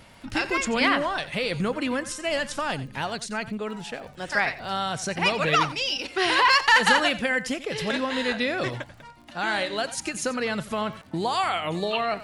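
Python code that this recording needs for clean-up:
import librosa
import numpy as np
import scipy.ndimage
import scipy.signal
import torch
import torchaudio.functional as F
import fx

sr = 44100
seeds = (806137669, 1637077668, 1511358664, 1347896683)

y = fx.fix_declick_ar(x, sr, threshold=6.5)
y = fx.fix_echo_inverse(y, sr, delay_ms=89, level_db=-15.5)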